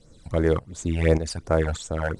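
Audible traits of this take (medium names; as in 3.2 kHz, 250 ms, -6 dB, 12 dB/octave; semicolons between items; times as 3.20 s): a quantiser's noise floor 10-bit, dither none; tremolo saw up 1.7 Hz, depth 70%; phasing stages 12, 2.8 Hz, lowest notch 350–3900 Hz; IMA ADPCM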